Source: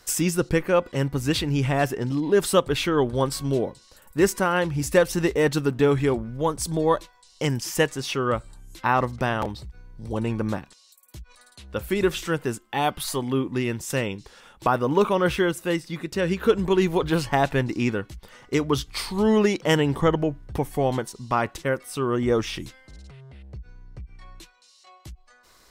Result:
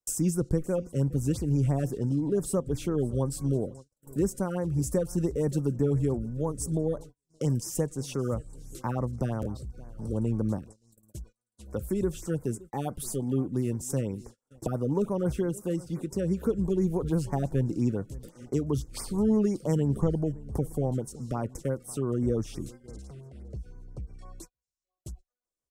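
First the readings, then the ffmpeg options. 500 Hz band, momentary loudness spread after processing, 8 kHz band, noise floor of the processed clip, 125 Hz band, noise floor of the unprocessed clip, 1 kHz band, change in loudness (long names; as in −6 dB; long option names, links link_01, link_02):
−8.0 dB, 16 LU, −5.5 dB, below −85 dBFS, −0.5 dB, −56 dBFS, −15.0 dB, −5.5 dB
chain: -filter_complex "[0:a]equalizer=frequency=250:width_type=o:width=1:gain=3,equalizer=frequency=500:width_type=o:width=1:gain=4,equalizer=frequency=2000:width_type=o:width=1:gain=-10,equalizer=frequency=4000:width_type=o:width=1:gain=-8,equalizer=frequency=8000:width_type=o:width=1:gain=7,acrossover=split=190[link_01][link_02];[link_02]acompressor=threshold=-39dB:ratio=2[link_03];[link_01][link_03]amix=inputs=2:normalize=0,aecho=1:1:570|1140|1710:0.0891|0.0312|0.0109,agate=range=-39dB:threshold=-44dB:ratio=16:detection=peak,afftfilt=real='re*(1-between(b*sr/1024,810*pow(3600/810,0.5+0.5*sin(2*PI*5.9*pts/sr))/1.41,810*pow(3600/810,0.5+0.5*sin(2*PI*5.9*pts/sr))*1.41))':imag='im*(1-between(b*sr/1024,810*pow(3600/810,0.5+0.5*sin(2*PI*5.9*pts/sr))/1.41,810*pow(3600/810,0.5+0.5*sin(2*PI*5.9*pts/sr))*1.41))':win_size=1024:overlap=0.75"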